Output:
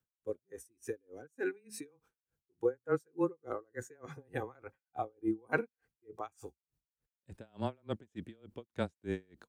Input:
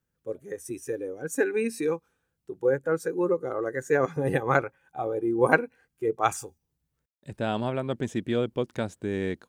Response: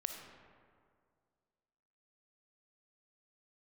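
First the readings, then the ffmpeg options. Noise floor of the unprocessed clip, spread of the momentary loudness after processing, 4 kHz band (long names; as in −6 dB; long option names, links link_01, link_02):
−82 dBFS, 17 LU, −12.5 dB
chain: -af "afreqshift=-15,aeval=exprs='val(0)*pow(10,-38*(0.5-0.5*cos(2*PI*3.4*n/s))/20)':channel_layout=same,volume=-3.5dB"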